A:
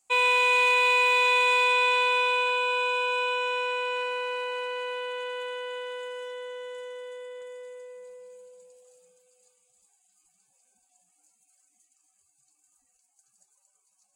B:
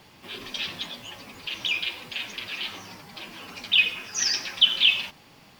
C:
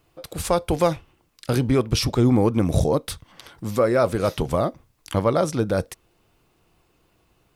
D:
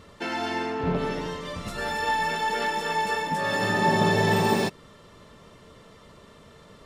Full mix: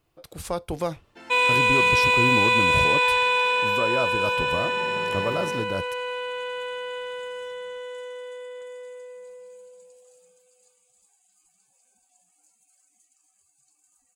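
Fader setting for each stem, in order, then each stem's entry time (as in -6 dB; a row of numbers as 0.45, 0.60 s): +2.5 dB, off, -8.0 dB, -15.5 dB; 1.20 s, off, 0.00 s, 0.95 s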